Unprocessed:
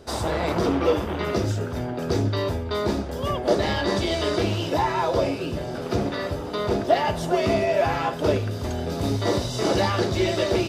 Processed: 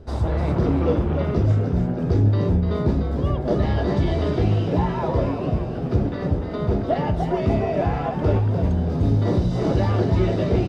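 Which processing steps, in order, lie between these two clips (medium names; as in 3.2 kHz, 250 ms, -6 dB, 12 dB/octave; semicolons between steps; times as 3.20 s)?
RIAA curve playback; frequency-shifting echo 297 ms, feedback 35%, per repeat +74 Hz, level -7 dB; trim -5 dB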